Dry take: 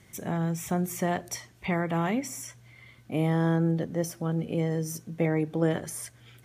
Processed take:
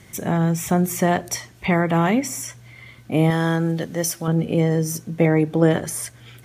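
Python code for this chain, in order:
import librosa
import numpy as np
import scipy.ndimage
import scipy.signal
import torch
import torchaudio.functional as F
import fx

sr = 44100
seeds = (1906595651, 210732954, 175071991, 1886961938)

y = fx.tilt_shelf(x, sr, db=-6.0, hz=1300.0, at=(3.3, 4.28))
y = F.gain(torch.from_numpy(y), 9.0).numpy()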